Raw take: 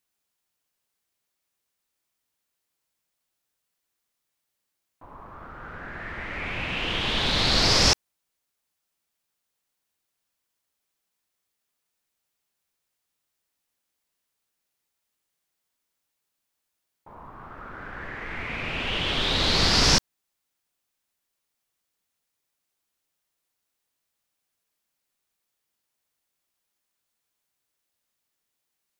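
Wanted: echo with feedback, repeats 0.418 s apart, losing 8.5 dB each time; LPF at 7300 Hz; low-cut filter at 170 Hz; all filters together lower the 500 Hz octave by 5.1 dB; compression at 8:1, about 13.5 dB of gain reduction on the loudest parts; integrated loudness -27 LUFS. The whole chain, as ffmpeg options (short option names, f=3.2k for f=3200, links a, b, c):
-af "highpass=170,lowpass=7.3k,equalizer=f=500:t=o:g=-6.5,acompressor=threshold=-32dB:ratio=8,aecho=1:1:418|836|1254|1672:0.376|0.143|0.0543|0.0206,volume=7.5dB"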